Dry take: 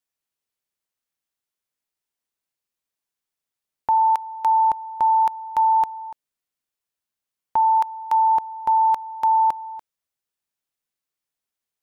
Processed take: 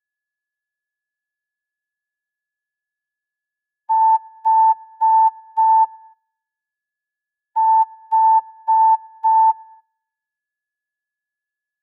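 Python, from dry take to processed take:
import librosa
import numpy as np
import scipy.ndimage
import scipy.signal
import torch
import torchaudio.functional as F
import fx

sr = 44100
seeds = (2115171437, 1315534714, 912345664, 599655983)

p1 = x + 10.0 ** (-52.0 / 20.0) * np.sin(2.0 * np.pi * 1700.0 * np.arange(len(x)) / sr)
p2 = fx.dispersion(p1, sr, late='lows', ms=49.0, hz=400.0)
p3 = fx.hpss(p2, sr, part='percussive', gain_db=-16)
p4 = p3 + fx.echo_feedback(p3, sr, ms=116, feedback_pct=57, wet_db=-20.0, dry=0)
p5 = fx.upward_expand(p4, sr, threshold_db=-39.0, expansion=2.5)
y = F.gain(torch.from_numpy(p5), 4.0).numpy()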